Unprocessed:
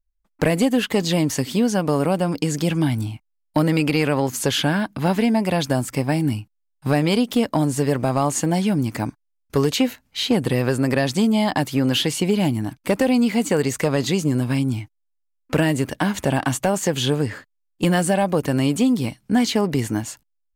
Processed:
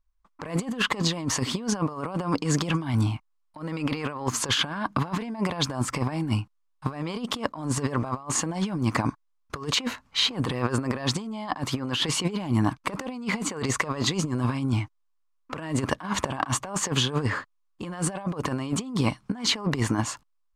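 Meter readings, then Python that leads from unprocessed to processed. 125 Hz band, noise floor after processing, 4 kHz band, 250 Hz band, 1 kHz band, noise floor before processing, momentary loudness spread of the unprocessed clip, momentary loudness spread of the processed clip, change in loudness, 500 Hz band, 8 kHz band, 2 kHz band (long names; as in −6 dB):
−5.5 dB, −70 dBFS, −1.5 dB, −9.0 dB, −5.0 dB, −72 dBFS, 6 LU, 8 LU, −6.5 dB, −11.5 dB, −1.5 dB, −4.5 dB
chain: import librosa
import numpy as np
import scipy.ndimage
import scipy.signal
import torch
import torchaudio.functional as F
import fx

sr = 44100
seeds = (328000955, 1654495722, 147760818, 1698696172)

y = fx.peak_eq(x, sr, hz=1100.0, db=14.0, octaves=0.62)
y = fx.over_compress(y, sr, threshold_db=-23.0, ratio=-0.5)
y = scipy.signal.sosfilt(scipy.signal.butter(2, 7400.0, 'lowpass', fs=sr, output='sos'), y)
y = F.gain(torch.from_numpy(y), -3.0).numpy()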